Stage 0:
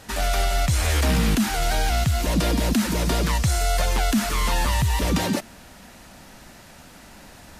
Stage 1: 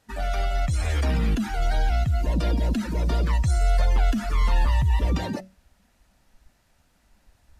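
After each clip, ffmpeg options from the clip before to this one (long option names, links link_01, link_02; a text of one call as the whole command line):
ffmpeg -i in.wav -af "bandreject=frequency=188.3:width_type=h:width=4,bandreject=frequency=376.6:width_type=h:width=4,bandreject=frequency=564.9:width_type=h:width=4,bandreject=frequency=753.2:width_type=h:width=4,bandreject=frequency=941.5:width_type=h:width=4,bandreject=frequency=1129.8:width_type=h:width=4,bandreject=frequency=1318.1:width_type=h:width=4,bandreject=frequency=1506.4:width_type=h:width=4,bandreject=frequency=1694.7:width_type=h:width=4,bandreject=frequency=1883:width_type=h:width=4,bandreject=frequency=2071.3:width_type=h:width=4,bandreject=frequency=2259.6:width_type=h:width=4,bandreject=frequency=2447.9:width_type=h:width=4,bandreject=frequency=2636.2:width_type=h:width=4,bandreject=frequency=2824.5:width_type=h:width=4,bandreject=frequency=3012.8:width_type=h:width=4,bandreject=frequency=3201.1:width_type=h:width=4,bandreject=frequency=3389.4:width_type=h:width=4,bandreject=frequency=3577.7:width_type=h:width=4,bandreject=frequency=3766:width_type=h:width=4,bandreject=frequency=3954.3:width_type=h:width=4,bandreject=frequency=4142.6:width_type=h:width=4,bandreject=frequency=4330.9:width_type=h:width=4,bandreject=frequency=4519.2:width_type=h:width=4,bandreject=frequency=4707.5:width_type=h:width=4,bandreject=frequency=4895.8:width_type=h:width=4,bandreject=frequency=5084.1:width_type=h:width=4,bandreject=frequency=5272.4:width_type=h:width=4,bandreject=frequency=5460.7:width_type=h:width=4,bandreject=frequency=5649:width_type=h:width=4,bandreject=frequency=5837.3:width_type=h:width=4,bandreject=frequency=6025.6:width_type=h:width=4,bandreject=frequency=6213.9:width_type=h:width=4,bandreject=frequency=6402.2:width_type=h:width=4,bandreject=frequency=6590.5:width_type=h:width=4,bandreject=frequency=6778.8:width_type=h:width=4,bandreject=frequency=6967.1:width_type=h:width=4,bandreject=frequency=7155.4:width_type=h:width=4,bandreject=frequency=7343.7:width_type=h:width=4,afftdn=noise_reduction=16:noise_floor=-29,asubboost=boost=2.5:cutoff=100,volume=-4dB" out.wav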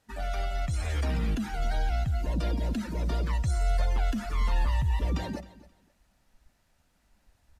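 ffmpeg -i in.wav -af "aecho=1:1:264|528:0.119|0.025,volume=-5.5dB" out.wav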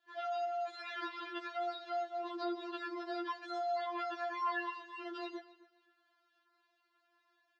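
ffmpeg -i in.wav -af "highpass=frequency=390:width=0.5412,highpass=frequency=390:width=1.3066,equalizer=frequency=480:width_type=q:width=4:gain=10,equalizer=frequency=730:width_type=q:width=4:gain=-7,equalizer=frequency=1100:width_type=q:width=4:gain=5,equalizer=frequency=1600:width_type=q:width=4:gain=3,equalizer=frequency=2400:width_type=q:width=4:gain=-5,lowpass=frequency=4100:width=0.5412,lowpass=frequency=4100:width=1.3066,afftfilt=real='re*4*eq(mod(b,16),0)':imag='im*4*eq(mod(b,16),0)':win_size=2048:overlap=0.75,volume=1dB" out.wav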